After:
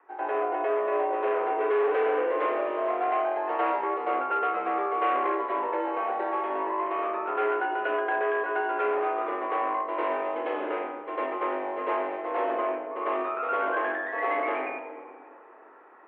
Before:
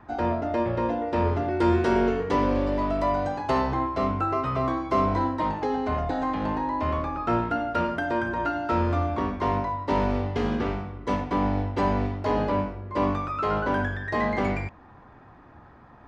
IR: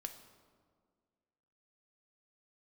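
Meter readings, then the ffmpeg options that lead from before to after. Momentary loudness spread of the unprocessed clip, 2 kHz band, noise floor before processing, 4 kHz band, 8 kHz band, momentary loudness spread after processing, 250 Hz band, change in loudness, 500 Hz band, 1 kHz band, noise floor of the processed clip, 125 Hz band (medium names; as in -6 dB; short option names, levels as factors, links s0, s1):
4 LU, +1.5 dB, -50 dBFS, -6.5 dB, no reading, 5 LU, -11.0 dB, -2.0 dB, 0.0 dB, 0.0 dB, -50 dBFS, under -40 dB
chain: -filter_complex "[0:a]asplit=2[s0][s1];[1:a]atrim=start_sample=2205,asetrate=32634,aresample=44100,adelay=100[s2];[s1][s2]afir=irnorm=-1:irlink=0,volume=2.82[s3];[s0][s3]amix=inputs=2:normalize=0,volume=4.22,asoftclip=hard,volume=0.237,highpass=f=300:t=q:w=0.5412,highpass=f=300:t=q:w=1.307,lowpass=f=2700:t=q:w=0.5176,lowpass=f=2700:t=q:w=0.7071,lowpass=f=2700:t=q:w=1.932,afreqshift=69,volume=0.398"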